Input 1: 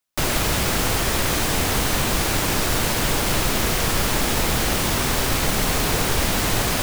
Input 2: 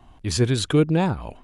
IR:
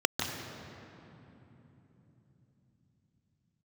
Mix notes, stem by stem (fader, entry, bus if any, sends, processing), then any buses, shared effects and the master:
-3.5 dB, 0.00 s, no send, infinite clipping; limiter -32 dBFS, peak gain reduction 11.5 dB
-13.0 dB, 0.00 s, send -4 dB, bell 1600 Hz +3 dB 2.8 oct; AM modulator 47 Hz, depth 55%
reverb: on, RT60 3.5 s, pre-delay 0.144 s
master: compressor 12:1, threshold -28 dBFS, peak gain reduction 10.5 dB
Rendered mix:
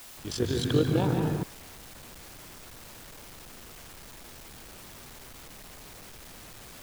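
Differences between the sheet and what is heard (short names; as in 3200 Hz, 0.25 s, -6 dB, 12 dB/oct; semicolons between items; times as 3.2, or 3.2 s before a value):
stem 1 -3.5 dB -> -15.0 dB; master: missing compressor 12:1, threshold -28 dBFS, peak gain reduction 10.5 dB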